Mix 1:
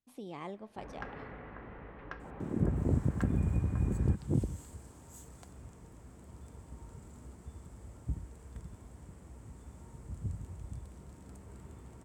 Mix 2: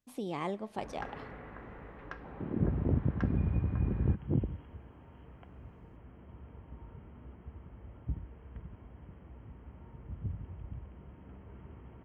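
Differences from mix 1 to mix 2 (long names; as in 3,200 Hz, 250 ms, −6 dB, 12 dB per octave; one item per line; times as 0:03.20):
speech +7.0 dB
second sound: add linear-phase brick-wall low-pass 3,300 Hz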